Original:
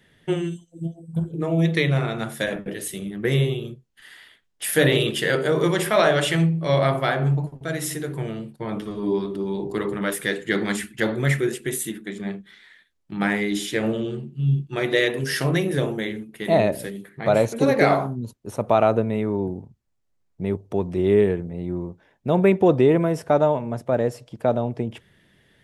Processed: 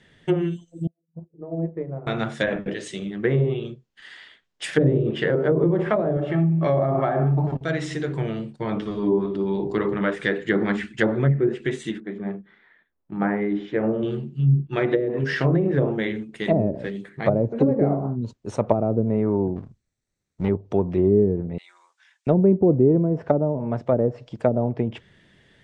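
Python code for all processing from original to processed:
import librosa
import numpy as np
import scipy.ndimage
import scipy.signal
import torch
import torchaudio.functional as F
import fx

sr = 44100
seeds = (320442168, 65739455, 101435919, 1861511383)

y = fx.chain(x, sr, fx.ladder_lowpass(hz=940.0, resonance_pct=20),
    fx.low_shelf(hz=130.0, db=-10.5),
    fx.upward_expand(threshold_db=-45.0, expansion=2.5), at=(0.87, 2.07))
y = fx.chain(y, sr, fx.lowpass(hz=6600.0, slope=12),
    fx.low_shelf(hz=110.0, db=-8.5), at=(2.74, 4.64))
y = fx.chain(y, sr, fx.low_shelf(hz=330.0, db=-6.5),
    fx.notch_comb(f0_hz=490.0),
    fx.env_flatten(amount_pct=70), at=(6.17, 7.57))
y = fx.chain(y, sr, fx.lowpass(hz=1200.0, slope=12),
    fx.low_shelf(hz=160.0, db=-6.5), at=(12.0, 14.03))
y = fx.chain(y, sr, fx.lower_of_two(delay_ms=0.49),
    fx.high_shelf(hz=6900.0, db=8.5), at=(19.56, 20.49))
y = fx.chain(y, sr, fx.highpass(hz=1300.0, slope=24),
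    fx.high_shelf(hz=4300.0, db=11.5), at=(21.58, 22.27))
y = fx.env_lowpass_down(y, sr, base_hz=370.0, full_db=-15.5)
y = scipy.signal.sosfilt(scipy.signal.butter(6, 8600.0, 'lowpass', fs=sr, output='sos'), y)
y = y * 10.0 ** (2.5 / 20.0)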